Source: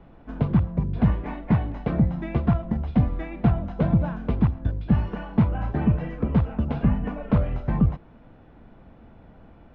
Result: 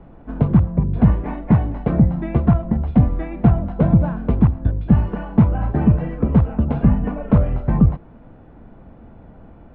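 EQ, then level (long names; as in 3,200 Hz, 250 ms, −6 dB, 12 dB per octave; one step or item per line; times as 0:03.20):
high-frequency loss of the air 55 metres
high-shelf EQ 2,100 Hz −10.5 dB
+6.5 dB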